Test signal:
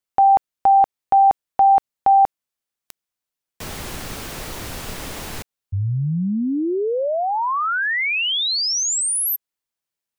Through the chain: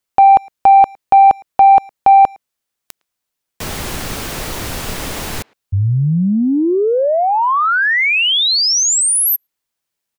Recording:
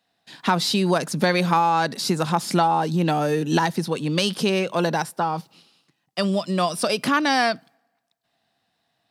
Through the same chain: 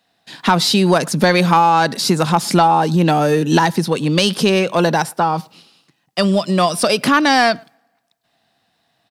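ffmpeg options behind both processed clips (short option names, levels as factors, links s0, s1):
-filter_complex "[0:a]asplit=2[s0][s1];[s1]adelay=110,highpass=300,lowpass=3400,asoftclip=type=hard:threshold=0.188,volume=0.0447[s2];[s0][s2]amix=inputs=2:normalize=0,acontrast=47,volume=1.19"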